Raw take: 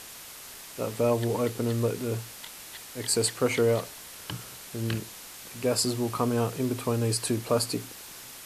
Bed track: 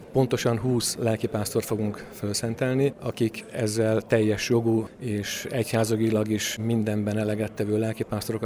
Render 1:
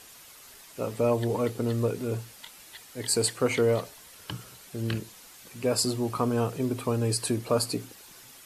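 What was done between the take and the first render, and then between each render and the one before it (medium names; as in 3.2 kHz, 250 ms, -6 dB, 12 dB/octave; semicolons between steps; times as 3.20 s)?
noise reduction 8 dB, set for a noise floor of -45 dBFS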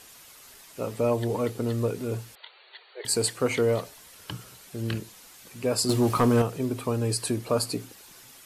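2.35–3.05 s: brick-wall FIR band-pass 350–4600 Hz; 5.89–6.42 s: waveshaping leveller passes 2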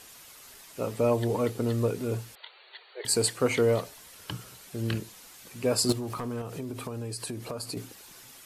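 5.92–7.77 s: compression, threshold -32 dBFS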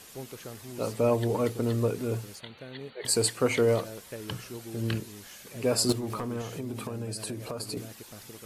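add bed track -19.5 dB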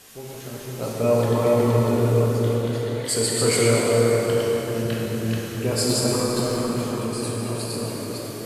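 chunks repeated in reverse 256 ms, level -1.5 dB; plate-style reverb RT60 4.8 s, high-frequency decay 0.6×, DRR -4.5 dB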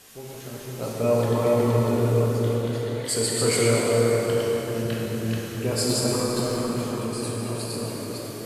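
trim -2 dB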